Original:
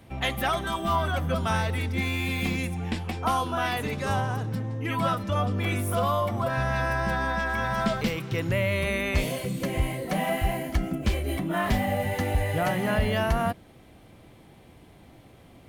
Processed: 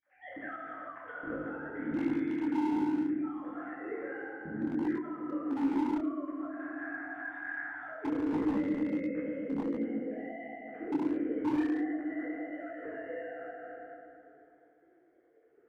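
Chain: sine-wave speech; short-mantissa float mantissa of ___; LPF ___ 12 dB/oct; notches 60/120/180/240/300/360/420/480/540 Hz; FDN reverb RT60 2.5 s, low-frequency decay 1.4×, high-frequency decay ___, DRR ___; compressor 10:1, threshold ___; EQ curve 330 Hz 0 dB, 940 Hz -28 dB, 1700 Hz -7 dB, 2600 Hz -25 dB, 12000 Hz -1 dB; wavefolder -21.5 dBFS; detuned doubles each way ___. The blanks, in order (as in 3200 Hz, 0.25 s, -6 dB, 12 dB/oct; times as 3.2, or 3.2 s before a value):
4-bit, 1700 Hz, 0.65×, -6 dB, -19 dBFS, 49 cents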